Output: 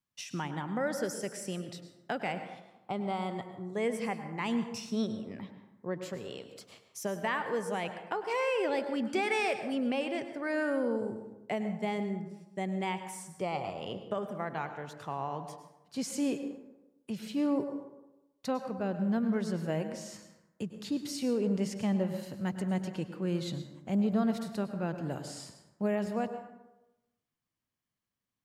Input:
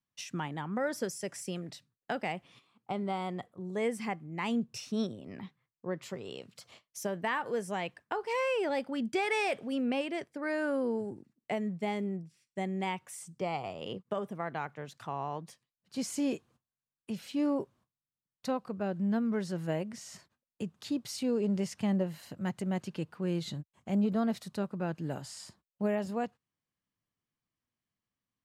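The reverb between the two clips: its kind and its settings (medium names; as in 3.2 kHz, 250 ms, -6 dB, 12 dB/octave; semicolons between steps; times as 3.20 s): plate-style reverb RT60 1 s, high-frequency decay 0.5×, pre-delay 90 ms, DRR 8.5 dB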